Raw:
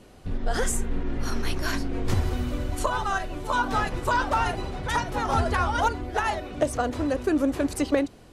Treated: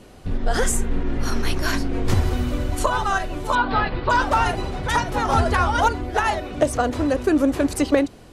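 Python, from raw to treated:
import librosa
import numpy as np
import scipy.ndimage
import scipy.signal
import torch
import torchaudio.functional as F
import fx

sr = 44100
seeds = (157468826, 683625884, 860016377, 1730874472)

y = fx.ellip_lowpass(x, sr, hz=4500.0, order=4, stop_db=40, at=(3.55, 4.1))
y = y * librosa.db_to_amplitude(5.0)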